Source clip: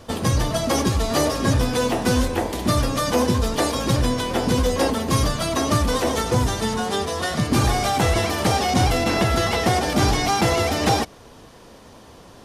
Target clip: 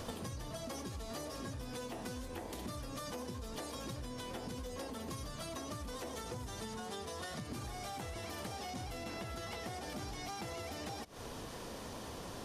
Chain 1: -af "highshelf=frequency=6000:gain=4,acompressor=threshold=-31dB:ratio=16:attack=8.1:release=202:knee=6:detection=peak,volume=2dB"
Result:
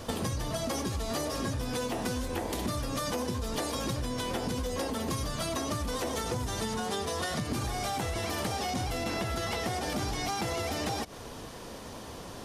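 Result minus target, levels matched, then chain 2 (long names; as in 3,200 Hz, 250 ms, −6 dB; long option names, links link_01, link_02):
downward compressor: peak gain reduction −11 dB
-af "highshelf=frequency=6000:gain=4,acompressor=threshold=-42.5dB:ratio=16:attack=8.1:release=202:knee=6:detection=peak,volume=2dB"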